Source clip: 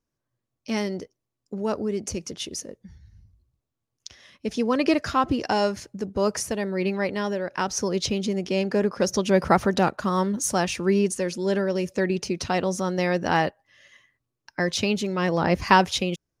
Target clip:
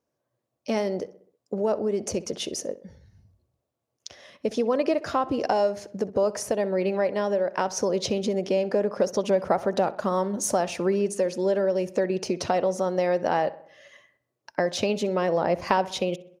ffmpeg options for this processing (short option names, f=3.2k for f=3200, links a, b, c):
-filter_complex "[0:a]highpass=94,equalizer=f=600:w=1.2:g=12.5,acompressor=threshold=-23dB:ratio=3,asplit=2[a][b];[b]adelay=64,lowpass=f=3k:p=1,volume=-17dB,asplit=2[c][d];[d]adelay=64,lowpass=f=3k:p=1,volume=0.54,asplit=2[e][f];[f]adelay=64,lowpass=f=3k:p=1,volume=0.54,asplit=2[g][h];[h]adelay=64,lowpass=f=3k:p=1,volume=0.54,asplit=2[i][j];[j]adelay=64,lowpass=f=3k:p=1,volume=0.54[k];[a][c][e][g][i][k]amix=inputs=6:normalize=0"